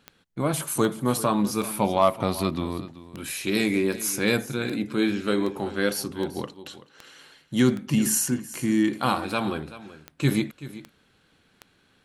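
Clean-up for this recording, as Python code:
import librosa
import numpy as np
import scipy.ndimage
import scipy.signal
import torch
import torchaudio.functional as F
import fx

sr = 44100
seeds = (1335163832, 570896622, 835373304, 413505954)

y = fx.fix_declick_ar(x, sr, threshold=10.0)
y = fx.fix_echo_inverse(y, sr, delay_ms=382, level_db=-16.0)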